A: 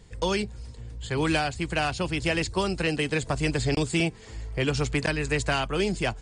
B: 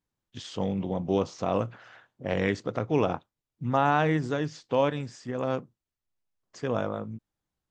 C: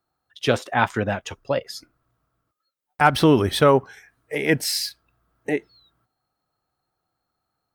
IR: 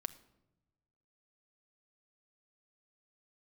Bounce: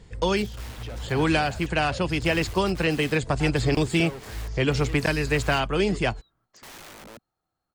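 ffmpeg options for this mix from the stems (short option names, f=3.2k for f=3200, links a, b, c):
-filter_complex "[0:a]highshelf=f=6.2k:g=-9,volume=3dB[a];[1:a]alimiter=limit=-19.5dB:level=0:latency=1:release=27,aeval=exprs='(mod(53.1*val(0)+1,2)-1)/53.1':c=same,volume=-4.5dB[b];[2:a]highshelf=f=4.3k:g=-6,asoftclip=type=hard:threshold=-21.5dB,adelay=400,volume=-4.5dB[c];[b][c]amix=inputs=2:normalize=0,alimiter=level_in=10.5dB:limit=-24dB:level=0:latency=1:release=73,volume=-10.5dB,volume=0dB[d];[a][d]amix=inputs=2:normalize=0"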